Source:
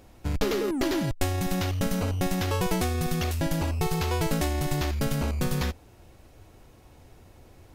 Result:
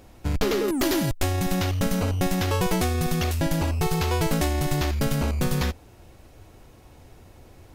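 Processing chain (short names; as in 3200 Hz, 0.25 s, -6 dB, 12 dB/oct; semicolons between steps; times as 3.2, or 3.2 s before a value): 0.68–1.18 high shelf 7100 Hz +11 dB; wavefolder -17 dBFS; gain +3 dB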